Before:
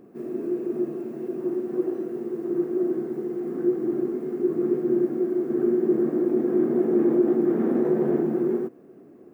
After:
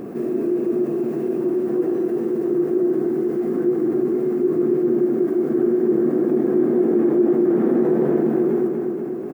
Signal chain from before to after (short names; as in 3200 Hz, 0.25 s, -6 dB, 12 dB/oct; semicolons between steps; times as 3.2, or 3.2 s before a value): on a send: feedback echo 0.242 s, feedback 49%, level -9 dB; on the sum: fast leveller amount 50%